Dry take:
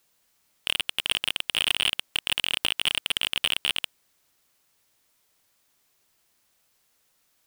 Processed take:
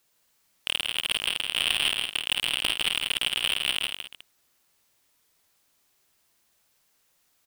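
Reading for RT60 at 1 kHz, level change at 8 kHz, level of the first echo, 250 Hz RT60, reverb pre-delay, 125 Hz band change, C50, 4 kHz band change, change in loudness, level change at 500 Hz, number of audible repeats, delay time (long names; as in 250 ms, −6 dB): no reverb audible, 0.0 dB, −6.5 dB, no reverb audible, no reverb audible, −0.5 dB, no reverb audible, 0.0 dB, 0.0 dB, 0.0 dB, 4, 50 ms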